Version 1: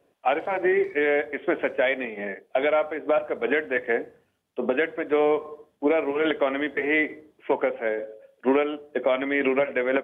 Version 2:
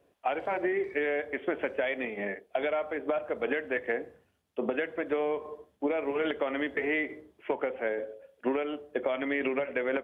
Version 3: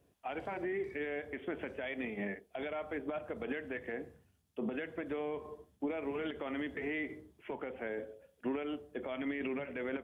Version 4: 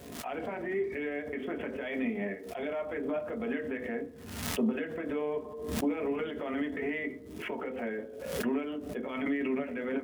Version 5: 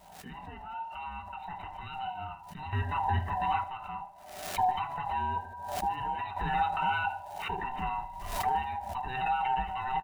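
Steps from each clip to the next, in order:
peaking EQ 64 Hz +10.5 dB 0.71 oct; compression, threshold -24 dBFS, peak gain reduction 7.5 dB; trim -2 dB
peaking EQ 550 Hz -4 dB 0.32 oct; peak limiter -25 dBFS, peak gain reduction 8.5 dB; tone controls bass +11 dB, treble +8 dB; trim -6 dB
crackle 350 per s -59 dBFS; on a send at -2 dB: reverberation RT60 0.25 s, pre-delay 3 ms; on the sum: swell ahead of each attack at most 51 dB/s
split-band scrambler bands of 500 Hz; random-step tremolo 1.1 Hz, depth 75%; feedback delay 76 ms, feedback 55%, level -22 dB; trim +4.5 dB

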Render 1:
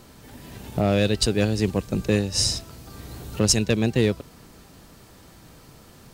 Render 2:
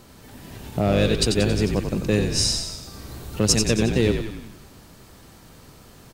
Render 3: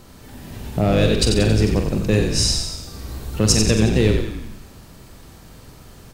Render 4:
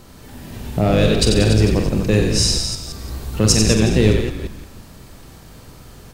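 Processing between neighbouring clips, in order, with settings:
on a send: frequency-shifting echo 91 ms, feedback 54%, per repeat -47 Hz, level -6 dB; on the sum: modulated delay 101 ms, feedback 55%, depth 210 cents, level -22 dB
bass shelf 81 Hz +7.5 dB; on a send: flutter echo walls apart 7.9 m, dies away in 0.36 s; on the sum: trim +1.5 dB
chunks repeated in reverse 172 ms, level -9.5 dB; trim +1.5 dB

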